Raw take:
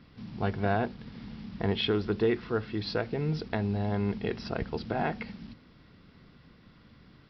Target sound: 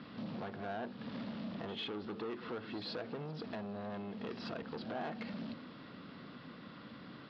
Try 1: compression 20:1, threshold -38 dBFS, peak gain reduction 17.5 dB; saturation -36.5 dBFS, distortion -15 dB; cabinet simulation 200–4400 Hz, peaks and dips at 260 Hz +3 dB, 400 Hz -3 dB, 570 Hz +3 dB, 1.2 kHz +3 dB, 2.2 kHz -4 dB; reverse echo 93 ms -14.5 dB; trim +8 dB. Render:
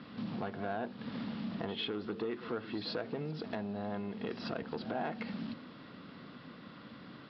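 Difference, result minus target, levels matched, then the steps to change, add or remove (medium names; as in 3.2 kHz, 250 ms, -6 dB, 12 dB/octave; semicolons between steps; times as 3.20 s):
saturation: distortion -7 dB
change: saturation -44.5 dBFS, distortion -8 dB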